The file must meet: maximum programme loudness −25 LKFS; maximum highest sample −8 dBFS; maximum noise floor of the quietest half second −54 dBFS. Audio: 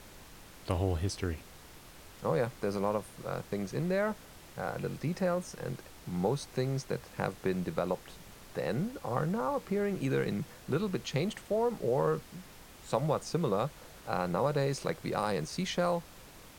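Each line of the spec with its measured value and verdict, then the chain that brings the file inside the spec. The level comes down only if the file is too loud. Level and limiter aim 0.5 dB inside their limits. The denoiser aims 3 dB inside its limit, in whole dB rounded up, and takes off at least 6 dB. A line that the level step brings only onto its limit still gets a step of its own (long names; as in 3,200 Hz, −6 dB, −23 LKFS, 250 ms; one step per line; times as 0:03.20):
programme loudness −33.5 LKFS: in spec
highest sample −13.5 dBFS: in spec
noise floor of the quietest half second −52 dBFS: out of spec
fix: broadband denoise 6 dB, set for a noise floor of −52 dBFS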